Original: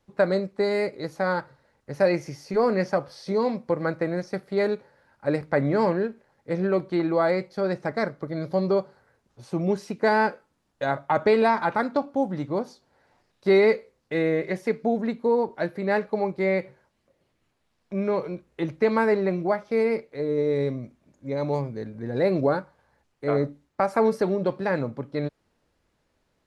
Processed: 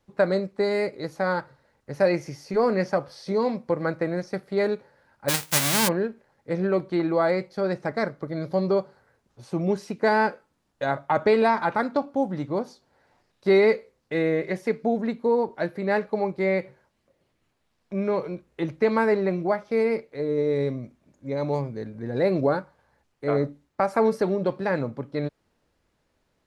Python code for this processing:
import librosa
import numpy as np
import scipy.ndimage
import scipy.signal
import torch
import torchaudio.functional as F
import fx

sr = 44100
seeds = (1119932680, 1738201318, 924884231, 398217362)

y = fx.envelope_flatten(x, sr, power=0.1, at=(5.28, 5.87), fade=0.02)